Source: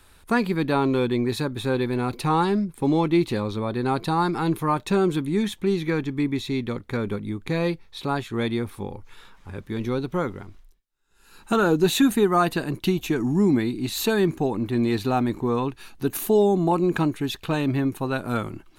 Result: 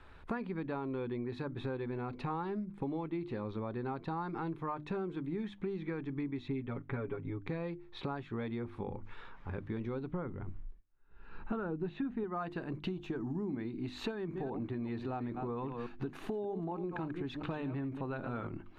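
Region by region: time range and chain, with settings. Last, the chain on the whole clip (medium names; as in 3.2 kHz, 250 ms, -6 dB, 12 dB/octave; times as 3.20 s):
6.48–7.42 s: low-pass 3.3 kHz 24 dB/octave + comb 7.2 ms, depth 92%
10.11–12.24 s: low-pass 2.9 kHz + bass shelf 180 Hz +10 dB
12.88–13.49 s: peaking EQ 2.2 kHz -7 dB 0.45 oct + tape noise reduction on one side only encoder only
14.11–18.47 s: chunks repeated in reverse 195 ms, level -11 dB + compression 2:1, threshold -24 dBFS
whole clip: low-pass 2.1 kHz 12 dB/octave; hum notches 50/100/150/200/250/300/350 Hz; compression 6:1, threshold -36 dBFS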